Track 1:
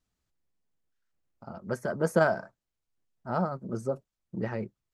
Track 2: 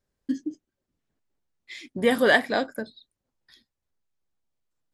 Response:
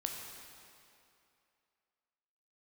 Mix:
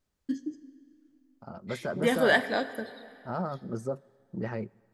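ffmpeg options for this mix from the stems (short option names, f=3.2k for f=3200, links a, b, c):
-filter_complex "[0:a]alimiter=limit=-20.5dB:level=0:latency=1:release=21,volume=-1.5dB,asplit=2[a][b];[b]volume=-23dB[c];[1:a]volume=-6.5dB,asplit=2[d][e];[e]volume=-8.5dB[f];[2:a]atrim=start_sample=2205[g];[c][f]amix=inputs=2:normalize=0[h];[h][g]afir=irnorm=-1:irlink=0[i];[a][d][i]amix=inputs=3:normalize=0"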